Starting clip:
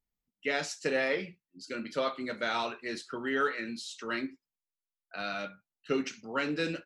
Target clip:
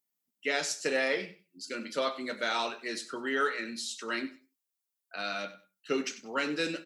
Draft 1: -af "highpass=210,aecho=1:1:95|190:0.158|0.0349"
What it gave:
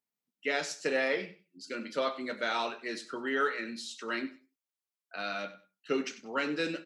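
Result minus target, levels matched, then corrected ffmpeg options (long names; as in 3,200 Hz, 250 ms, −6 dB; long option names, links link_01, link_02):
8,000 Hz band −5.5 dB
-af "highpass=210,highshelf=frequency=6000:gain=11.5,aecho=1:1:95|190:0.158|0.0349"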